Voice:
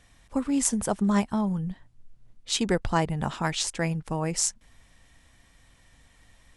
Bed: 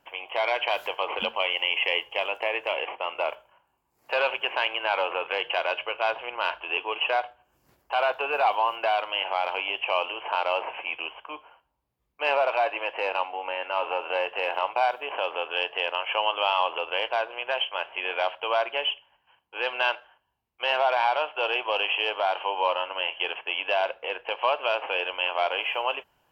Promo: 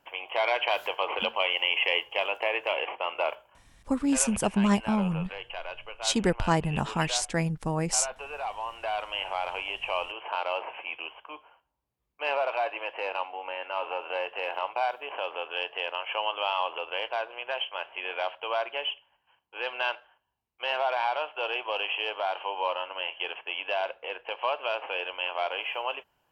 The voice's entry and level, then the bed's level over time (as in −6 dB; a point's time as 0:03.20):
3.55 s, 0.0 dB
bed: 0:03.64 −0.5 dB
0:04.11 −11.5 dB
0:08.60 −11.5 dB
0:09.06 −4.5 dB